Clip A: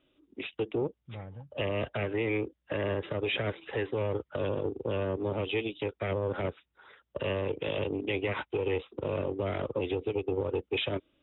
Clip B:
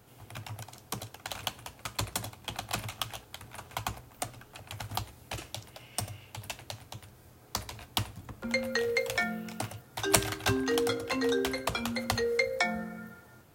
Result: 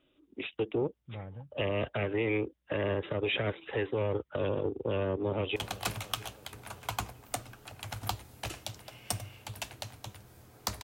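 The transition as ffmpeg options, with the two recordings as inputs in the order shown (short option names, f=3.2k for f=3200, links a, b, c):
-filter_complex "[0:a]apad=whole_dur=10.83,atrim=end=10.83,atrim=end=5.562[a];[1:a]atrim=start=2.438:end=7.71[b];[a][b]acrossfade=d=0.004:c1=hsin:c2=hsin,asplit=2[c][d];[d]afade=t=in:st=5.07:d=0.01,afade=t=out:st=5.56:d=0.01,aecho=0:1:330|660|990|1320|1650|1980:0.141254|0.0847523|0.0508514|0.0305108|0.0183065|0.0109839[e];[c][e]amix=inputs=2:normalize=0"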